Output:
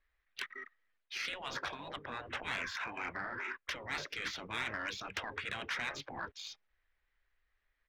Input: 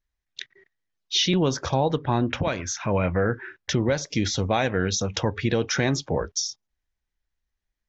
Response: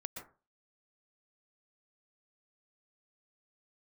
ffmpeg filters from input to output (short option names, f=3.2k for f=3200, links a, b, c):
-filter_complex "[0:a]areverse,acompressor=threshold=-32dB:ratio=8,areverse,equalizer=f=125:t=o:w=1:g=-6,equalizer=f=250:t=o:w=1:g=-6,equalizer=f=500:t=o:w=1:g=5,equalizer=f=1k:t=o:w=1:g=-3,equalizer=f=2k:t=o:w=1:g=4,equalizer=f=4k:t=o:w=1:g=4,afftfilt=real='re*lt(hypot(re,im),0.0398)':imag='im*lt(hypot(re,im),0.0398)':win_size=1024:overlap=0.75,equalizer=f=1.8k:t=o:w=1.9:g=9.5,acrossover=split=240[a][b];[b]adynamicsmooth=sensitivity=2.5:basefreq=3.3k[c];[a][c]amix=inputs=2:normalize=0,asplit=2[d][e];[e]asetrate=29433,aresample=44100,atempo=1.49831,volume=-10dB[f];[d][f]amix=inputs=2:normalize=0,asoftclip=type=tanh:threshold=-26dB"